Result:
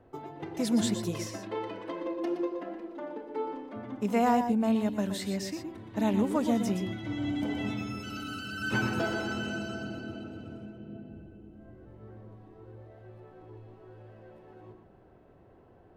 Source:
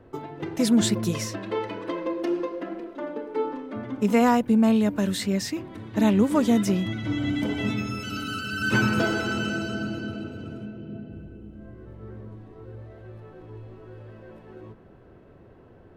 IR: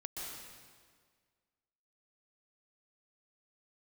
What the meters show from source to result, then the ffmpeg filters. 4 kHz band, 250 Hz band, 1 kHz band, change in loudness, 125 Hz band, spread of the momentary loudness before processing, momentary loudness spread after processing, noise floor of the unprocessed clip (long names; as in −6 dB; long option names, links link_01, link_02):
−7.0 dB, −6.5 dB, −3.5 dB, −6.5 dB, −7.5 dB, 23 LU, 23 LU, −51 dBFS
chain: -filter_complex "[0:a]equalizer=frequency=760:width=3.3:gain=7[link_01];[1:a]atrim=start_sample=2205,afade=type=out:start_time=0.17:duration=0.01,atrim=end_sample=7938[link_02];[link_01][link_02]afir=irnorm=-1:irlink=0,volume=-2.5dB"